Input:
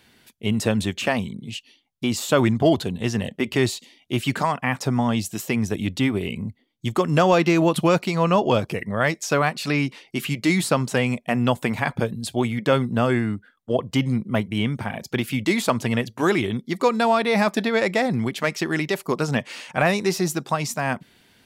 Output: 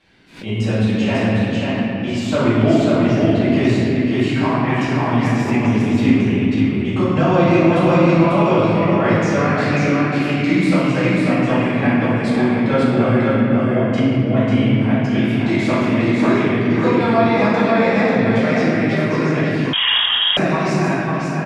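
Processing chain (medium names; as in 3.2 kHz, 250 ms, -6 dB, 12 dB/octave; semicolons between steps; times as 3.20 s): in parallel at -0.5 dB: compression, threshold -27 dBFS, peak gain reduction 14 dB; on the sum: distance through air 93 m; delay 543 ms -3.5 dB; reverberation RT60 3.1 s, pre-delay 4 ms, DRR -13.5 dB; 19.73–20.37 s: frequency inversion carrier 3.5 kHz; swell ahead of each attack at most 130 dB/s; trim -13 dB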